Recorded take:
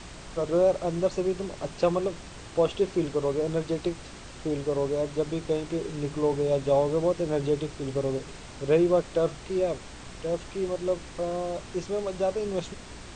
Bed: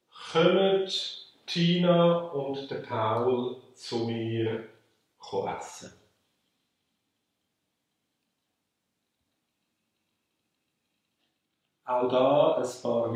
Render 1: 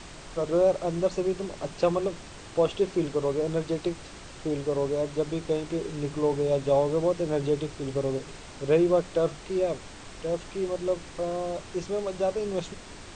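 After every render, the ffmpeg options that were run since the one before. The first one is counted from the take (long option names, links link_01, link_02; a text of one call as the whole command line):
ffmpeg -i in.wav -af "bandreject=frequency=60:width_type=h:width=4,bandreject=frequency=120:width_type=h:width=4,bandreject=frequency=180:width_type=h:width=4,bandreject=frequency=240:width_type=h:width=4" out.wav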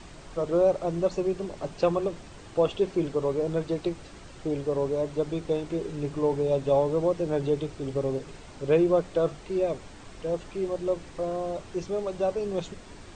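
ffmpeg -i in.wav -af "afftdn=noise_reduction=6:noise_floor=-45" out.wav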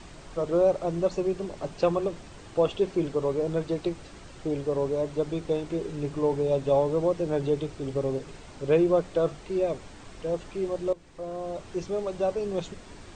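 ffmpeg -i in.wav -filter_complex "[0:a]asplit=2[link_01][link_02];[link_01]atrim=end=10.93,asetpts=PTS-STARTPTS,afade=type=out:start_time=10.926:duration=0.004:curve=hsin:silence=0.188365[link_03];[link_02]atrim=start=10.93,asetpts=PTS-STARTPTS,afade=type=in:duration=0.79:silence=0.188365[link_04];[link_03][link_04]concat=n=2:v=0:a=1" out.wav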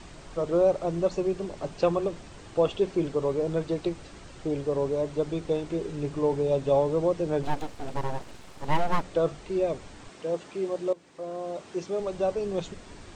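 ffmpeg -i in.wav -filter_complex "[0:a]asettb=1/sr,asplit=3[link_01][link_02][link_03];[link_01]atrim=end=7.434[link_04];[link_02]atrim=start=7.43:end=9.03,asetpts=PTS-STARTPTS,afade=type=in:duration=0.004:curve=qsin,afade=type=out:start_time=1.596:duration=0.004:curve=qsin,aeval=exprs='abs(val(0))':channel_layout=same[link_05];[link_03]atrim=start=9.026[link_06];[link_04][link_05]acrossfade=duration=0.004:curve1=hsin:curve2=qsin[link_07];[link_07][link_06]acrossfade=duration=0.004:curve1=qsin:curve2=hsin,asettb=1/sr,asplit=3[link_08][link_09][link_10];[link_08]atrim=end=10.094[link_11];[link_09]atrim=start=10.09:end=12,asetpts=PTS-STARTPTS,afade=type=in:duration=0.004:curve=qsin,afade=type=out:start_time=1.906:duration=0.004:curve=qsin,highpass=180[link_12];[link_10]atrim=start=11.996[link_13];[link_11][link_12]acrossfade=duration=0.004:curve1=hsin:curve2=qsin[link_14];[link_14][link_13]acrossfade=duration=0.004:curve1=qsin:curve2=hsin" out.wav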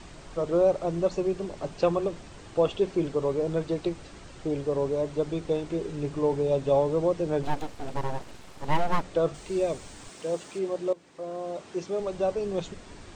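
ffmpeg -i in.wav -filter_complex "[0:a]asettb=1/sr,asplit=3[link_01][link_02][link_03];[link_01]atrim=end=9.344[link_04];[link_02]atrim=start=9.34:end=10.59,asetpts=PTS-STARTPTS,afade=type=in:duration=0.004:curve=qsin,afade=type=out:start_time=1.246:duration=0.004:curve=qsin,aemphasis=mode=production:type=50fm[link_05];[link_03]atrim=start=10.586[link_06];[link_04][link_05]acrossfade=duration=0.004:curve1=hsin:curve2=qsin[link_07];[link_07][link_06]acrossfade=duration=0.004:curve1=qsin:curve2=hsin" out.wav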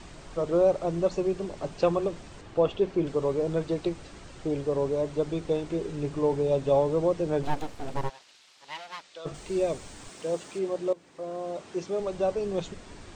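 ffmpeg -i in.wav -filter_complex "[0:a]asettb=1/sr,asplit=3[link_01][link_02][link_03];[link_01]atrim=end=2.414[link_04];[link_02]atrim=start=2.41:end=3.07,asetpts=PTS-STARTPTS,afade=type=in:duration=0.004:curve=qsin,afade=type=out:start_time=0.656:duration=0.004:curve=qsin,lowpass=frequency=3300:poles=1[link_05];[link_03]atrim=start=3.066[link_06];[link_04][link_05]acrossfade=duration=0.004:curve1=hsin:curve2=qsin[link_07];[link_07][link_06]acrossfade=duration=0.004:curve1=qsin:curve2=hsin,asplit=3[link_08][link_09][link_10];[link_08]afade=type=out:start_time=8.08:duration=0.02[link_11];[link_09]bandpass=frequency=4200:width_type=q:width=1.1,afade=type=in:start_time=8.08:duration=0.02,afade=type=out:start_time=9.25:duration=0.02[link_12];[link_10]afade=type=in:start_time=9.25:duration=0.02[link_13];[link_11][link_12][link_13]amix=inputs=3:normalize=0" out.wav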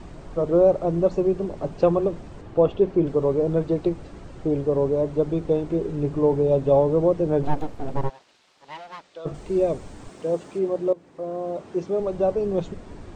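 ffmpeg -i in.wav -af "tiltshelf=frequency=1400:gain=7" out.wav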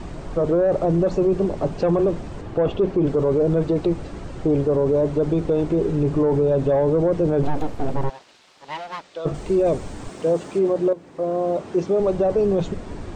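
ffmpeg -i in.wav -af "acontrast=81,alimiter=limit=-12.5dB:level=0:latency=1:release=10" out.wav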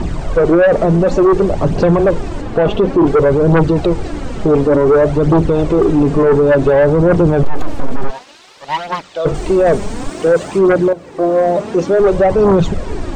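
ffmpeg -i in.wav -af "aphaser=in_gain=1:out_gain=1:delay=5:decay=0.51:speed=0.56:type=triangular,aeval=exprs='0.501*sin(PI/2*2*val(0)/0.501)':channel_layout=same" out.wav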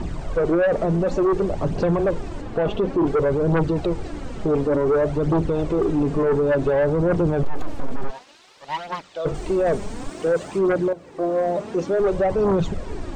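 ffmpeg -i in.wav -af "volume=-9dB" out.wav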